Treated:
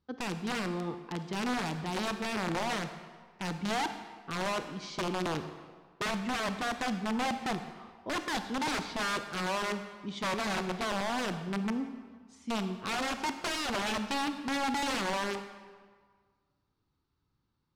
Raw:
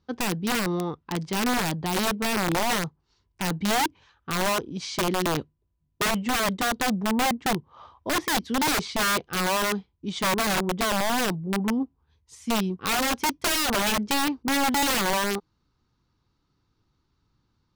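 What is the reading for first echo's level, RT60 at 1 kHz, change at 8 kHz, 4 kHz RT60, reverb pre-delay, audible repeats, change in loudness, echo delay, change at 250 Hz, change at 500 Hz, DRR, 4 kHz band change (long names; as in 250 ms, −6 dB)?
no echo audible, 1.7 s, −13.0 dB, 1.2 s, 31 ms, no echo audible, −8.0 dB, no echo audible, −7.5 dB, −7.0 dB, 8.5 dB, −9.0 dB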